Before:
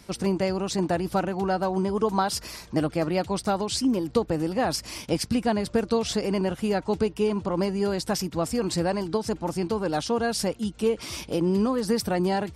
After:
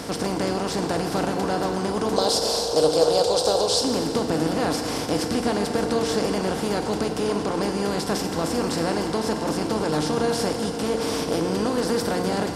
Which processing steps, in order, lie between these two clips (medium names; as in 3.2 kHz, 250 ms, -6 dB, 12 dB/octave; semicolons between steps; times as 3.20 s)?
spectral levelling over time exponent 0.4; 2.16–3.84 s: graphic EQ 125/250/500/2000/4000/8000 Hz -5/-12/+12/-12/+11/+5 dB; FDN reverb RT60 2.9 s, high-frequency decay 0.7×, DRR 4 dB; trim -6 dB